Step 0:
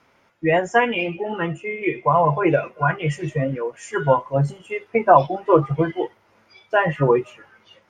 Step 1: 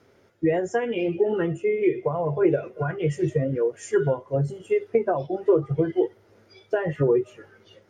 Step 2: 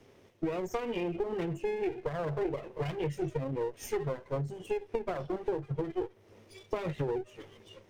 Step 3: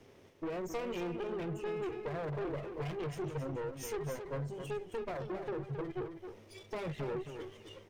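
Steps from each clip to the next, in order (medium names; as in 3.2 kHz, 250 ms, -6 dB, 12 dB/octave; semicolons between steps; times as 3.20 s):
compression 3:1, threshold -25 dBFS, peak gain reduction 13 dB; fifteen-band graphic EQ 100 Hz +8 dB, 400 Hz +10 dB, 1 kHz -9 dB, 2.5 kHz -7 dB
comb filter that takes the minimum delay 0.34 ms; compression 5:1, threshold -31 dBFS, peak gain reduction 15 dB
saturation -34.5 dBFS, distortion -9 dB; on a send: delay 268 ms -8 dB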